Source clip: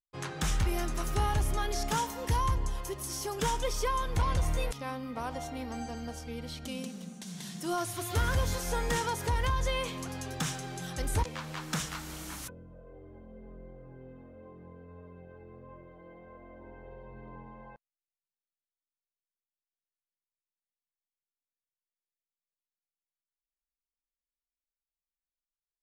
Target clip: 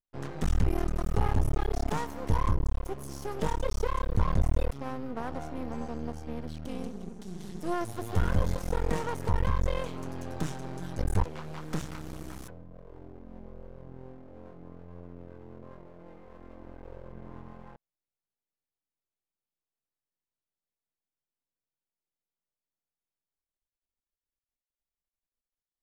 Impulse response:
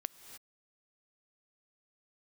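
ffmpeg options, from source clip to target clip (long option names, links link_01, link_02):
-af "tiltshelf=frequency=1100:gain=7.5,aeval=exprs='max(val(0),0)':channel_layout=same"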